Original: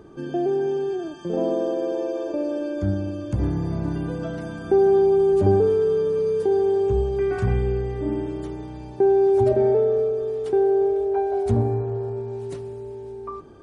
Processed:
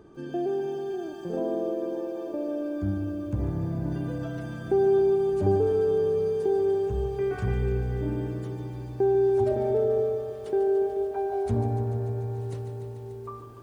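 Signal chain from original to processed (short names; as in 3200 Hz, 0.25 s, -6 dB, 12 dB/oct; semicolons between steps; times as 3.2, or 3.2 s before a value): 1.39–3.92 high shelf 2300 Hz -8 dB; lo-fi delay 0.146 s, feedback 80%, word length 9-bit, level -10 dB; gain -5.5 dB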